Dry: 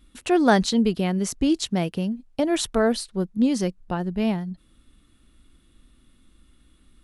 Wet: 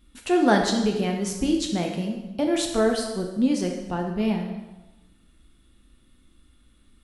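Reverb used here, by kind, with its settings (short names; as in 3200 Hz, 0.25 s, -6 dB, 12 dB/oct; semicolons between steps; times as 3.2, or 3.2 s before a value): plate-style reverb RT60 1.1 s, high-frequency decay 0.85×, DRR 1.5 dB; gain -3 dB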